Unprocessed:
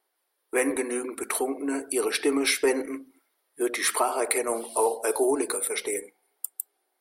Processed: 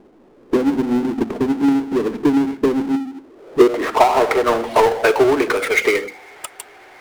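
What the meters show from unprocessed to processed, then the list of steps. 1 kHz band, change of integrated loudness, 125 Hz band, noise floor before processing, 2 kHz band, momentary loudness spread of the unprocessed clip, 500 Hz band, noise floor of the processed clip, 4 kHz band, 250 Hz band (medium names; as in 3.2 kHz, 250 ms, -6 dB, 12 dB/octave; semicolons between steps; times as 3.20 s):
+12.0 dB, +9.5 dB, no reading, -77 dBFS, +9.0 dB, 11 LU, +9.5 dB, -49 dBFS, +3.5 dB, +13.0 dB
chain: recorder AGC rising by 10 dB/s; transient shaper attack +11 dB, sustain -7 dB; low-pass sweep 220 Hz -> 2.2 kHz, 2.94–4.84 s; power-law waveshaper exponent 0.5; trim -3.5 dB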